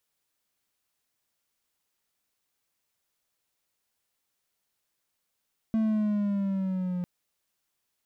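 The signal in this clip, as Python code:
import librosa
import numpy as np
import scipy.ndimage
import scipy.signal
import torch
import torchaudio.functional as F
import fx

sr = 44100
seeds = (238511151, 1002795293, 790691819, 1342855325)

y = fx.riser_tone(sr, length_s=1.3, level_db=-20.0, wave='triangle', hz=223.0, rise_st=-4.0, swell_db=-6)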